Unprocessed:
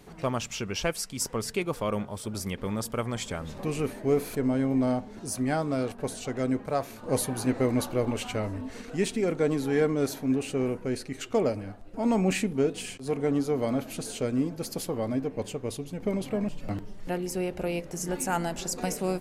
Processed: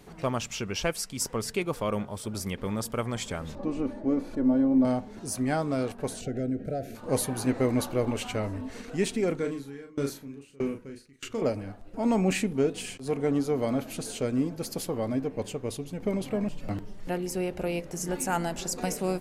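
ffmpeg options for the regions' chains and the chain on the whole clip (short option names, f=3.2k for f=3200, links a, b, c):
-filter_complex "[0:a]asettb=1/sr,asplit=3[a][b][c];[a]atrim=end=3.554[d];[b]atrim=start=3.55:end=4.85,asetpts=PTS-STARTPTS,afade=t=in:d=0.004:c=qsin,afade=t=out:st=1.296:d=0.004:c=qsin,lowpass=3.4k,equalizer=f=2.4k:w=0.8:g=-12,aecho=1:1:3.5:0.71,atrim=end_sample=57330[e];[c]atrim=start=4.846[f];[d][e]acrossfade=d=0.004:c1=hsin:c2=qsin[g];[g][f]acrossfade=d=0.004:c1=qsin:c2=hsin,asettb=1/sr,asplit=3[h][i][j];[h]atrim=end=6.214[k];[i]atrim=start=6.21:end=6.95,asetpts=PTS-STARTPTS,afade=t=in:d=0.004:c=qsin,afade=t=out:st=0.736:d=0.004:c=qsin,tiltshelf=f=800:g=6.5,acompressor=threshold=-28dB:ratio=3:attack=3.2:release=140:knee=1:detection=peak,asuperstop=centerf=1000:order=20:qfactor=1.8[l];[j]atrim=start=6.946[m];[k][l]acrossfade=d=0.004:c1=hsin:c2=qsin[n];[n][m]acrossfade=d=0.004:c1=qsin:c2=hsin,asettb=1/sr,asplit=3[o][p][q];[o]atrim=end=9.354[r];[p]atrim=start=9.35:end=11.42,asetpts=PTS-STARTPTS,afade=t=in:d=0.004:c=qsin,afade=t=out:st=2.066:d=0.004:c=qsin,equalizer=f=710:t=o:w=0.61:g=-11,asplit=2[s][t];[t]adelay=36,volume=-3.5dB[u];[s][u]amix=inputs=2:normalize=0,atrim=end_sample=91287,aeval=exprs='val(0)*pow(10,-26*if(lt(mod(1.6*n/s,1),2*abs(1.6)/1000),1-mod(1.6*n/s,1)/(2*abs(1.6)/1000),(mod(1.6*n/s,1)-2*abs(1.6)/1000)/(1-2*abs(1.6)/1000))/20)':c=same[v];[q]atrim=start=11.416[w];[r][v]acrossfade=d=0.004:c1=hsin:c2=qsin[x];[x][w]acrossfade=d=0.004:c1=qsin:c2=hsin"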